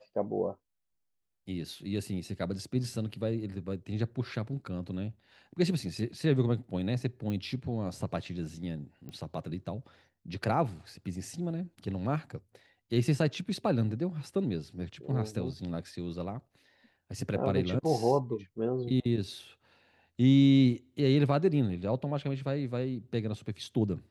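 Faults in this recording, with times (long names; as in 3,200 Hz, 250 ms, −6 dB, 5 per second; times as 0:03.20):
0:07.30: click −24 dBFS
0:09.09: click −31 dBFS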